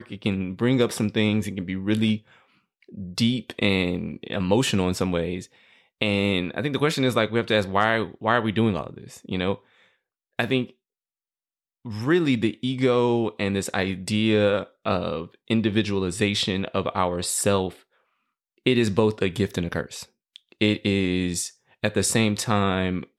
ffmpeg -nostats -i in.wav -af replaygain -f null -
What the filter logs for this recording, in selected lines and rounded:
track_gain = +4.1 dB
track_peak = 0.353